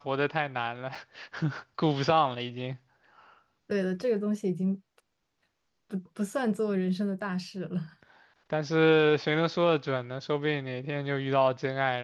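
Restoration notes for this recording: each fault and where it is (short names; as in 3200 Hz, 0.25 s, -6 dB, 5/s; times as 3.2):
0.95 gap 3.8 ms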